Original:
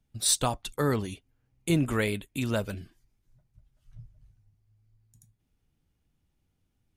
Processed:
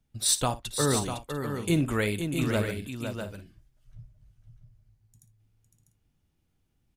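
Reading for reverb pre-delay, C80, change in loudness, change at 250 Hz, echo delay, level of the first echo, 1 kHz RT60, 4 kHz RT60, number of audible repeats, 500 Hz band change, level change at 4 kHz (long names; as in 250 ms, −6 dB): no reverb audible, no reverb audible, +0.5 dB, +1.5 dB, 57 ms, −15.0 dB, no reverb audible, no reverb audible, 4, +1.5 dB, +1.5 dB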